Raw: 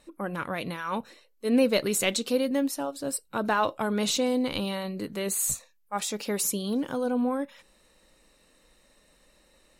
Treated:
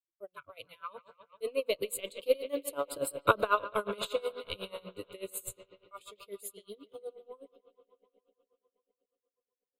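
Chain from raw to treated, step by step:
source passing by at 0:03.18, 7 m/s, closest 1.9 metres
noise reduction from a noise print of the clip's start 21 dB
noise gate with hold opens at −57 dBFS
in parallel at −0.5 dB: downward compressor, threshold −43 dBFS, peak gain reduction 18 dB
on the sum: transient designer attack +6 dB, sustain −5 dB
phaser with its sweep stopped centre 1,200 Hz, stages 8
on a send: bucket-brigade delay 145 ms, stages 4,096, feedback 77%, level −15 dB
on the sum: tremolo with a sine in dB 8.2 Hz, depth 22 dB
level +8 dB

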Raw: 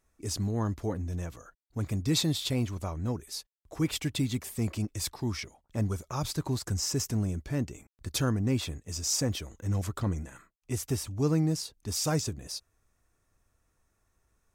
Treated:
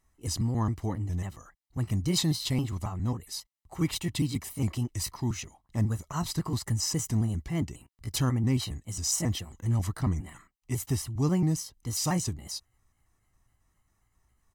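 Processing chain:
pitch shifter gated in a rhythm +2.5 semitones, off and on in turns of 136 ms
comb filter 1 ms, depth 51%

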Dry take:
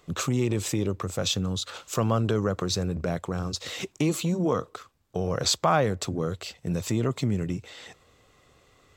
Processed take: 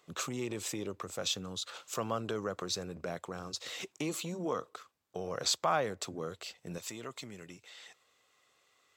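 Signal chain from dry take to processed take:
high-pass filter 450 Hz 6 dB per octave, from 0:06.78 1,300 Hz
level −6 dB

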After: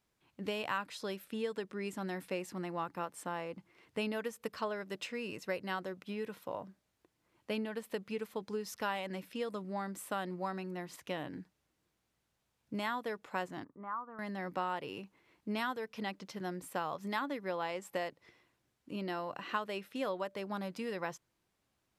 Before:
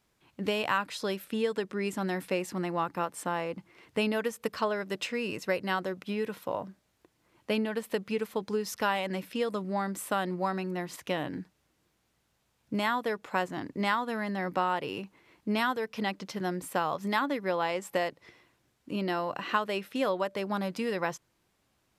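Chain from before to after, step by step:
0:13.64–0:14.19: transistor ladder low-pass 1,300 Hz, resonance 70%
level −7.5 dB

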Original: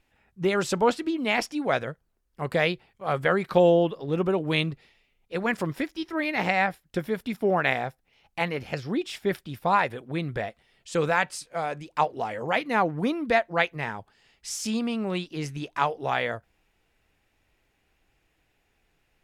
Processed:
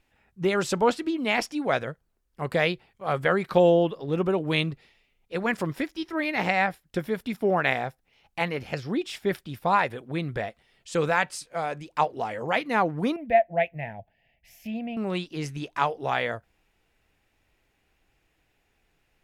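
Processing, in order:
0:13.16–0:14.97: drawn EQ curve 160 Hz 0 dB, 420 Hz −13 dB, 670 Hz +6 dB, 1,200 Hz −29 dB, 1,800 Hz −5 dB, 2,600 Hz −4 dB, 4,000 Hz −21 dB, 8,800 Hz −29 dB, 13,000 Hz −4 dB

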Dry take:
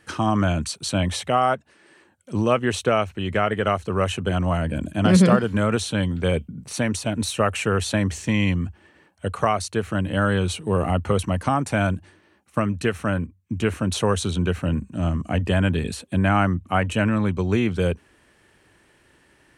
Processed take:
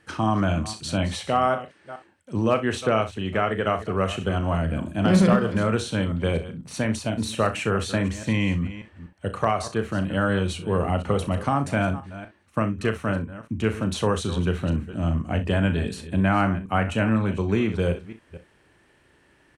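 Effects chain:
delay that plays each chunk backwards 245 ms, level −14 dB
high-shelf EQ 5,400 Hz −6.5 dB
hard clipping −8 dBFS, distortion −32 dB
on a send: ambience of single reflections 36 ms −10 dB, 63 ms −15.5 dB
on the sum: level −2 dB

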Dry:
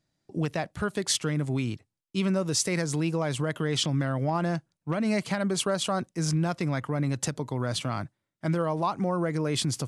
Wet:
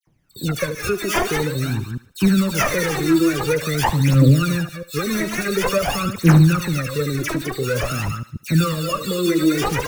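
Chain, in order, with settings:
delay that plays each chunk backwards 136 ms, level −8.5 dB
Chebyshev band-stop filter 550–1,200 Hz, order 3
in parallel at −2 dB: brickwall limiter −22 dBFS, peak gain reduction 8.5 dB
on the sum: decimation without filtering 11×
phase shifter 0.48 Hz, delay 3.2 ms, feedback 74%
all-pass dispersion lows, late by 71 ms, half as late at 2,000 Hz
pitch vibrato 0.96 Hz 20 cents
on a send: feedback echo with a high-pass in the loop 74 ms, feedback 47%, high-pass 620 Hz, level −13 dB
on the sum: level +2.5 dB

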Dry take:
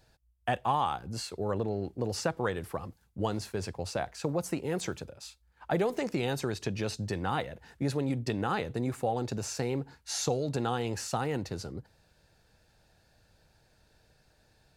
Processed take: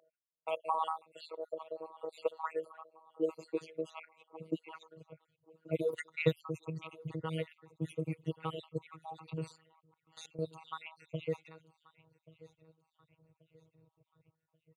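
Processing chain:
time-frequency cells dropped at random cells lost 67%
low-pass that shuts in the quiet parts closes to 680 Hz, open at −30 dBFS
0:00.91–0:01.53: low-shelf EQ 240 Hz −9 dB
downward compressor 1.5 to 1, threshold −39 dBFS, peak gain reduction 5.5 dB
0:05.93–0:06.35: transient designer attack +12 dB, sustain −5 dB
phaser with its sweep stopped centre 1,100 Hz, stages 8
phases set to zero 160 Hz
high-pass filter sweep 650 Hz → 120 Hz, 0:02.03–0:05.46
on a send: repeating echo 1,133 ms, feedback 39%, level −21 dB
0:09.56–0:10.39: on the sum: output level in coarse steps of 18 dB
level +4.5 dB

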